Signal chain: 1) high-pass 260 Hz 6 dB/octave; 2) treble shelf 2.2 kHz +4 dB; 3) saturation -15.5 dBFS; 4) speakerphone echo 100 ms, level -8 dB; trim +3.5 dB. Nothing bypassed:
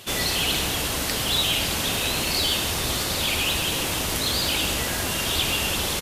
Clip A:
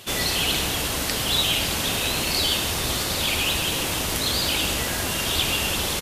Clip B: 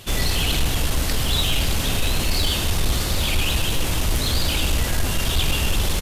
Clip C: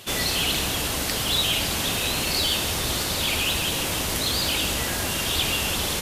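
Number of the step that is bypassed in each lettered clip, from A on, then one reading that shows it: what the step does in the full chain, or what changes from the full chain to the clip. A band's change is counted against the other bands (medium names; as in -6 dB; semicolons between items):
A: 3, distortion -26 dB; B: 1, 125 Hz band +9.0 dB; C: 4, echo-to-direct -10.5 dB to none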